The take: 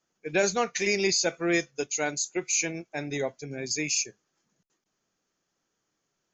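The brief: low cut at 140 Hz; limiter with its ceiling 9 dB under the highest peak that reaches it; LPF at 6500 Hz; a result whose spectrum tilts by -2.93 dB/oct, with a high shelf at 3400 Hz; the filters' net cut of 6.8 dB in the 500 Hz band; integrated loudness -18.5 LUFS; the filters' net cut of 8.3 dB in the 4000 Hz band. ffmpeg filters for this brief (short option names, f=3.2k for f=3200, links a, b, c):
-af "highpass=140,lowpass=6.5k,equalizer=f=500:t=o:g=-9,highshelf=f=3.4k:g=-6,equalizer=f=4k:t=o:g=-4.5,volume=17.5dB,alimiter=limit=-6.5dB:level=0:latency=1"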